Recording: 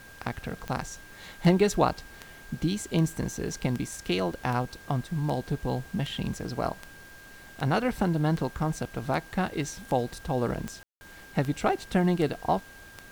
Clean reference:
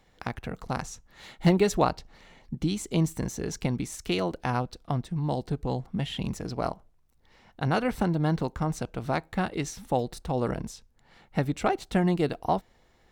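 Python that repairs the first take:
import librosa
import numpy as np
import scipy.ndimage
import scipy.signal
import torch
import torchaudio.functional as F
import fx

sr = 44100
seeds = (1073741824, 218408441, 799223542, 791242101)

y = fx.fix_declick_ar(x, sr, threshold=10.0)
y = fx.notch(y, sr, hz=1600.0, q=30.0)
y = fx.fix_ambience(y, sr, seeds[0], print_start_s=12.6, print_end_s=13.1, start_s=10.83, end_s=11.01)
y = fx.noise_reduce(y, sr, print_start_s=12.6, print_end_s=13.1, reduce_db=12.0)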